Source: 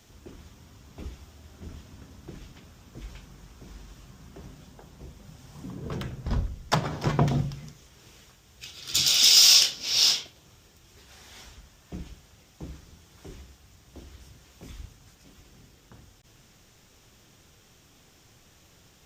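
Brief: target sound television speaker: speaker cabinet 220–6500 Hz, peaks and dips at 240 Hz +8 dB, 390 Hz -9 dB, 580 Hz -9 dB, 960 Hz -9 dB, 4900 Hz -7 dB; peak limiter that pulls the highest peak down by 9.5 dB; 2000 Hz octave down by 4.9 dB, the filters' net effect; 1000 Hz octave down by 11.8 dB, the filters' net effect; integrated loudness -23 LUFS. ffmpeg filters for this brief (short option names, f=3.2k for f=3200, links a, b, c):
-af "equalizer=f=1k:t=o:g=-8.5,equalizer=f=2k:t=o:g=-4.5,alimiter=limit=-13.5dB:level=0:latency=1,highpass=f=220:w=0.5412,highpass=f=220:w=1.3066,equalizer=f=240:t=q:w=4:g=8,equalizer=f=390:t=q:w=4:g=-9,equalizer=f=580:t=q:w=4:g=-9,equalizer=f=960:t=q:w=4:g=-9,equalizer=f=4.9k:t=q:w=4:g=-7,lowpass=f=6.5k:w=0.5412,lowpass=f=6.5k:w=1.3066,volume=7dB"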